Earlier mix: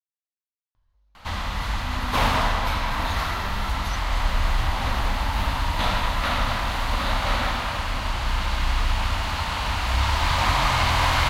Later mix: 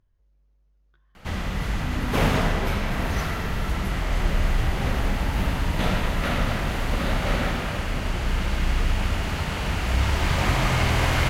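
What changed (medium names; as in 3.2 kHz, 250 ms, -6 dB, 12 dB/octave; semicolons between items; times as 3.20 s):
speech: entry -0.75 s; master: add fifteen-band graphic EQ 160 Hz +10 dB, 400 Hz +10 dB, 1 kHz -9 dB, 4 kHz -7 dB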